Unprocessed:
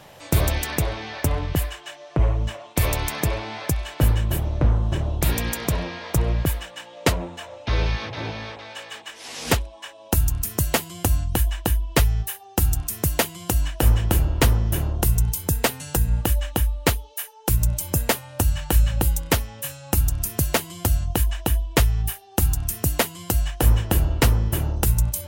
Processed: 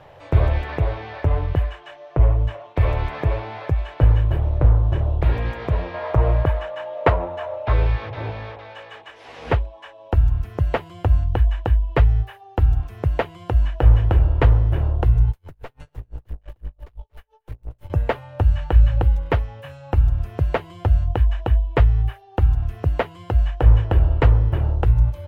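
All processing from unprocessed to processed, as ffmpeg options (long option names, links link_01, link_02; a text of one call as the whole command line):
ffmpeg -i in.wav -filter_complex "[0:a]asettb=1/sr,asplit=3[link_01][link_02][link_03];[link_01]atrim=end=5.944[link_04];[link_02]atrim=start=5.94:end=7.73,asetpts=PTS-STARTPTS,afade=type=in:duration=0.004:curve=qsin,afade=type=out:start_time=1.786:duration=0.004:curve=qsin,equalizer=frequency=990:width=0.77:gain=7.5,aeval=exprs='val(0)+0.0282*sin(2*PI*620*n/s)':channel_layout=same[link_05];[link_03]atrim=start=7.726[link_06];[link_04][link_05]acrossfade=duration=0.004:curve1=hsin:curve2=qsin[link_07];[link_07][link_06]acrossfade=duration=0.004:curve1=qsin:curve2=hsin,asettb=1/sr,asplit=3[link_08][link_09][link_10];[link_08]atrim=end=15.314[link_11];[link_09]atrim=start=15.31:end=17.9,asetpts=PTS-STARTPTS,afade=type=in:duration=0.004:curve=qsin,afade=type=out:start_time=2.586:duration=0.004:curve=qsin,aeval=exprs='(tanh(31.6*val(0)+0.55)-tanh(0.55))/31.6':channel_layout=same,aecho=1:1:231:0.282,atrim=end_sample=114219,aeval=exprs='val(0)*pow(10,-36*(0.5-0.5*cos(2*PI*5.9*n/s))/20)':channel_layout=same[link_12];[link_10]atrim=start=17.896[link_13];[link_11][link_12]acrossfade=duration=0.004:curve1=hsin:curve2=qsin[link_14];[link_14][link_13]acrossfade=duration=0.004:curve1=qsin:curve2=hsin,acrossover=split=3600[link_15][link_16];[link_16]acompressor=threshold=-41dB:ratio=4:attack=1:release=60[link_17];[link_15][link_17]amix=inputs=2:normalize=0,firequalizer=gain_entry='entry(110,0);entry(190,-12);entry(440,-2);entry(5200,-19);entry(7900,-25)':delay=0.05:min_phase=1,volume=4.5dB" out.wav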